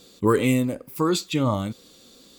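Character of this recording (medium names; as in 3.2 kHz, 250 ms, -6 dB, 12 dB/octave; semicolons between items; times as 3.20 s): noise floor -53 dBFS; spectral tilt -5.5 dB/octave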